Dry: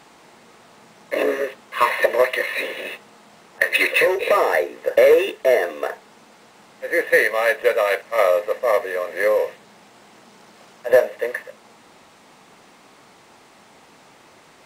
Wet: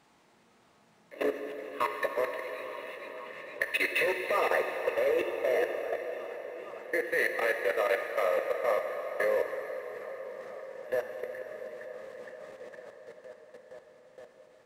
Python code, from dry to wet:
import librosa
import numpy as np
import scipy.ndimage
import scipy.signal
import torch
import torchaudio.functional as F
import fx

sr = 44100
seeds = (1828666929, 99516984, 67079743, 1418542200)

p1 = fx.bass_treble(x, sr, bass_db=4, treble_db=-1)
p2 = p1 + fx.echo_tape(p1, sr, ms=464, feedback_pct=79, wet_db=-9.0, lp_hz=4100.0, drive_db=0.0, wow_cents=7, dry=0)
p3 = fx.level_steps(p2, sr, step_db=19)
p4 = fx.rev_plate(p3, sr, seeds[0], rt60_s=4.8, hf_ratio=0.85, predelay_ms=0, drr_db=4.5)
y = F.gain(torch.from_numpy(p4), -8.0).numpy()